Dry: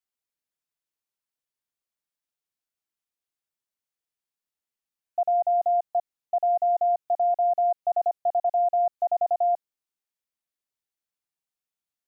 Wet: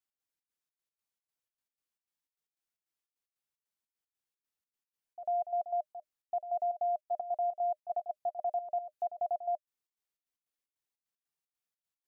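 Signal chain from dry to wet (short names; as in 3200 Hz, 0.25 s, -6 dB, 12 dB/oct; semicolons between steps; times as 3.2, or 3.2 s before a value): notch 610 Hz, Q 14; limiter -24.5 dBFS, peak gain reduction 6 dB; step gate "x.xx.xx." 152 bpm -12 dB; gain -2.5 dB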